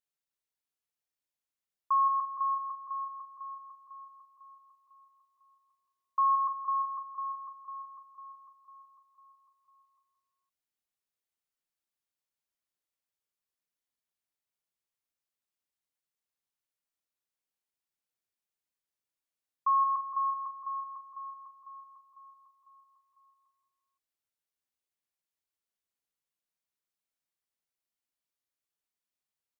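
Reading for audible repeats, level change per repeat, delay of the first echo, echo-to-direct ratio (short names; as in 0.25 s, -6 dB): 3, -5.5 dB, 0.172 s, -7.0 dB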